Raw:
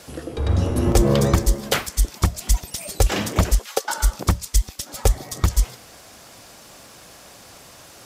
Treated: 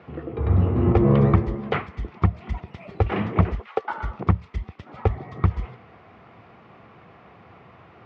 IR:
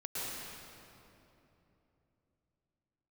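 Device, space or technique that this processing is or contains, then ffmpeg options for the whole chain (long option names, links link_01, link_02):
bass cabinet: -af "highpass=frequency=77:width=0.5412,highpass=frequency=77:width=1.3066,equalizer=frequency=280:width_type=q:width=4:gain=-7,equalizer=frequency=570:width_type=q:width=4:gain=-10,equalizer=frequency=900:width_type=q:width=4:gain=-4,equalizer=frequency=1600:width_type=q:width=4:gain=-10,lowpass=frequency=2000:width=0.5412,lowpass=frequency=2000:width=1.3066,volume=3dB"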